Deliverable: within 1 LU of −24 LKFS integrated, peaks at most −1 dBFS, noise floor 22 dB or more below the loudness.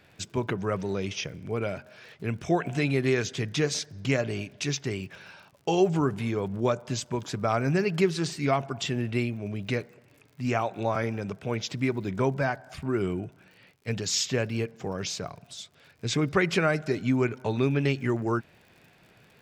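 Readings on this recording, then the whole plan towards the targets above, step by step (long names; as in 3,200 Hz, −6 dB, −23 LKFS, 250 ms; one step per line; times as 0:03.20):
crackle rate 58 per second; integrated loudness −28.5 LKFS; sample peak −10.5 dBFS; target loudness −24.0 LKFS
→ click removal
level +4.5 dB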